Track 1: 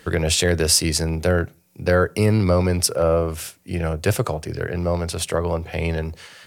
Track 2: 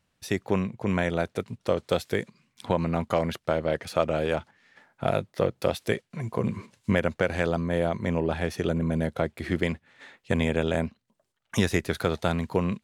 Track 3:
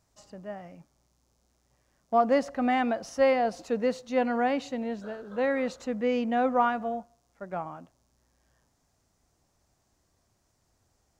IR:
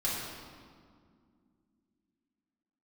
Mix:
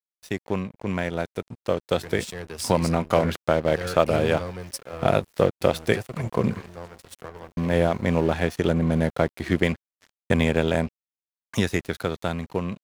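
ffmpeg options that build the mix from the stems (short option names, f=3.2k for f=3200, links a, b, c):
-filter_complex "[0:a]bandreject=f=570:w=12,adelay=1900,volume=-18dB[a];[1:a]volume=-1dB,asplit=3[b][c][d];[b]atrim=end=6.88,asetpts=PTS-STARTPTS,afade=t=out:st=6.876:d=0.004:c=hsin[e];[c]atrim=start=6.88:end=7.57,asetpts=PTS-STARTPTS,volume=0[f];[d]atrim=start=7.57,asetpts=PTS-STARTPTS,afade=t=in:d=0.004:c=hsin[g];[e][f][g]concat=n=3:v=0:a=1[h];[2:a]acompressor=threshold=-35dB:ratio=5,aeval=exprs='val(0)*gte(abs(val(0)),0.00794)':c=same,highpass=f=740:p=1,adelay=1550,volume=-14dB[i];[a][h][i]amix=inputs=3:normalize=0,aeval=exprs='sgn(val(0))*max(abs(val(0))-0.0075,0)':c=same,dynaudnorm=f=380:g=11:m=7dB"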